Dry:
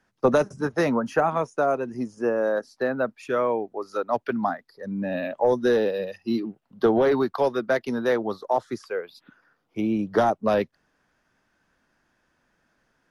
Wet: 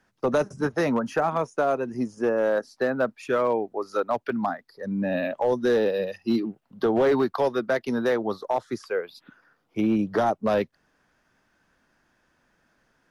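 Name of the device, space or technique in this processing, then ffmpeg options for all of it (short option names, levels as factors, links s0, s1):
limiter into clipper: -af "alimiter=limit=0.168:level=0:latency=1:release=317,asoftclip=type=hard:threshold=0.133,volume=1.26"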